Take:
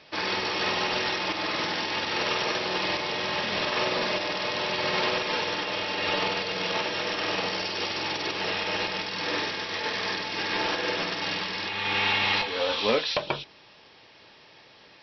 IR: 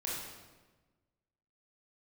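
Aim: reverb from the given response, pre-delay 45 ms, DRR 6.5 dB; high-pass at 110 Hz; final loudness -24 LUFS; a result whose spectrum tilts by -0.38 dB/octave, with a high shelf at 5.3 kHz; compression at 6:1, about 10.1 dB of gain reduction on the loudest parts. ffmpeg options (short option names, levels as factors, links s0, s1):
-filter_complex "[0:a]highpass=110,highshelf=f=5300:g=-6.5,acompressor=threshold=0.0316:ratio=6,asplit=2[s0][s1];[1:a]atrim=start_sample=2205,adelay=45[s2];[s1][s2]afir=irnorm=-1:irlink=0,volume=0.335[s3];[s0][s3]amix=inputs=2:normalize=0,volume=2.37"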